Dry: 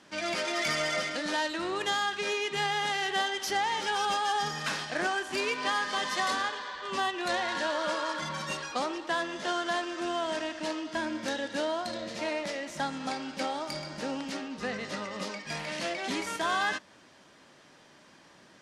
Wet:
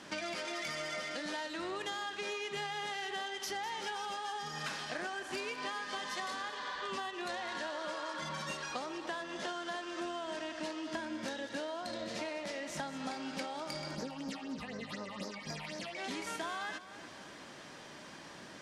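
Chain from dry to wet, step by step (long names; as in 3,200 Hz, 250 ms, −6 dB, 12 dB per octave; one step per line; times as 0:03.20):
downward compressor 10 to 1, threshold −43 dBFS, peak gain reduction 18 dB
0:13.95–0:15.96: all-pass phaser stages 6, 4 Hz, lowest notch 370–3,100 Hz
echo with a time of its own for lows and highs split 2,400 Hz, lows 296 ms, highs 202 ms, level −14 dB
level +6 dB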